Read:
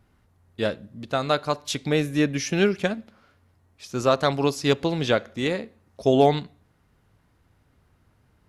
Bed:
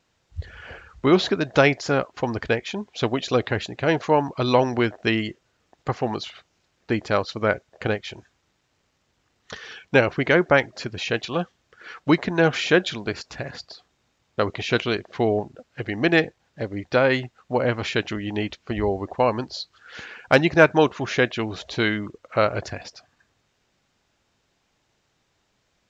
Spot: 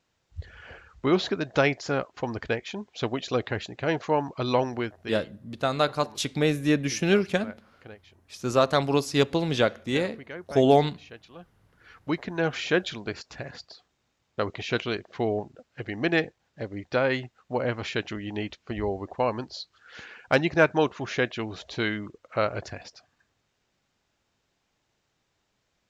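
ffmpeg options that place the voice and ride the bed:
ffmpeg -i stem1.wav -i stem2.wav -filter_complex "[0:a]adelay=4500,volume=-1dB[link_01];[1:a]volume=10.5dB,afade=type=out:start_time=4.59:duration=0.62:silence=0.158489,afade=type=in:start_time=11.38:duration=1.42:silence=0.158489[link_02];[link_01][link_02]amix=inputs=2:normalize=0" out.wav

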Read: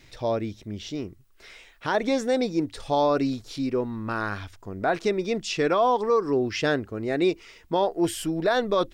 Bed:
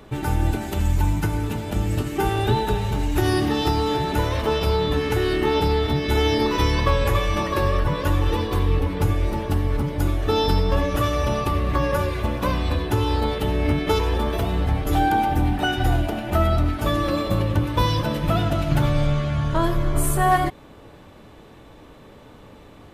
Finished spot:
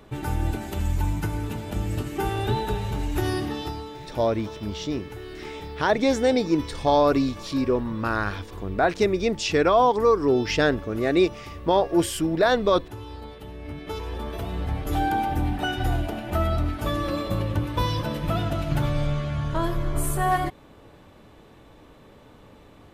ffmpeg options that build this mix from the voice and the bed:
ffmpeg -i stem1.wav -i stem2.wav -filter_complex "[0:a]adelay=3950,volume=3dB[link_01];[1:a]volume=8dB,afade=type=out:start_time=3.2:duration=0.72:silence=0.237137,afade=type=in:start_time=13.62:duration=1.42:silence=0.237137[link_02];[link_01][link_02]amix=inputs=2:normalize=0" out.wav

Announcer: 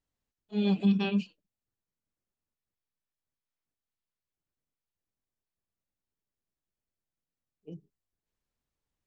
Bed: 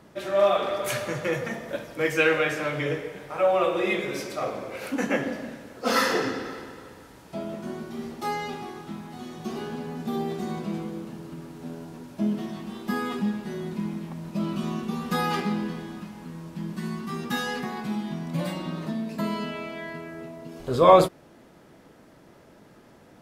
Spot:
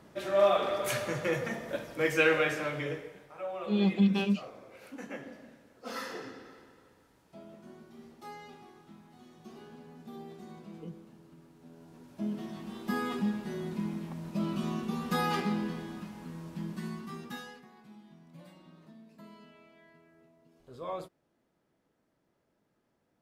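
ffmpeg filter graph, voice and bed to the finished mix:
ffmpeg -i stem1.wav -i stem2.wav -filter_complex "[0:a]adelay=3150,volume=0dB[link_01];[1:a]volume=9dB,afade=type=out:start_time=2.42:duration=0.92:silence=0.223872,afade=type=in:start_time=11.7:duration=1.28:silence=0.237137,afade=type=out:start_time=16.56:duration=1.05:silence=0.105925[link_02];[link_01][link_02]amix=inputs=2:normalize=0" out.wav

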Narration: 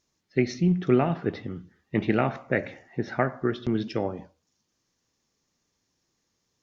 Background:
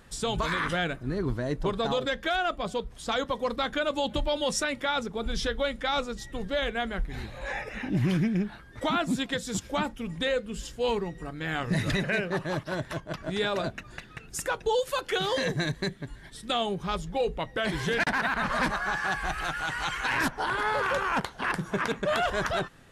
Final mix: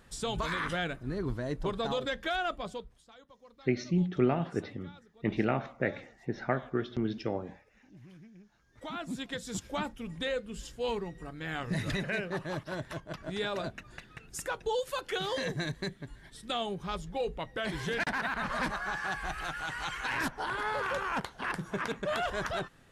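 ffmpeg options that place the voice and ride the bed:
ffmpeg -i stem1.wav -i stem2.wav -filter_complex "[0:a]adelay=3300,volume=-5.5dB[link_01];[1:a]volume=17.5dB,afade=type=out:start_time=2.52:duration=0.54:silence=0.0707946,afade=type=in:start_time=8.51:duration=1.05:silence=0.0794328[link_02];[link_01][link_02]amix=inputs=2:normalize=0" out.wav

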